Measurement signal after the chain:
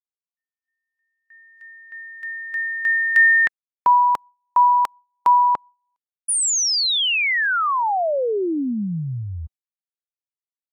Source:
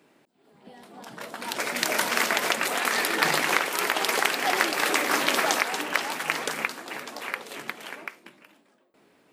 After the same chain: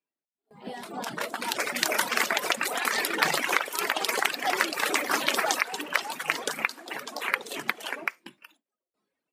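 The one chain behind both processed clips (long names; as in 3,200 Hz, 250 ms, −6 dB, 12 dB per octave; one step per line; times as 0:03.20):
reverb reduction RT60 1.4 s
high-pass filter 140 Hz 6 dB per octave
noise reduction from a noise print of the clip's start 11 dB
automatic gain control gain up to 16 dB
noise gate with hold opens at −42 dBFS
level −4 dB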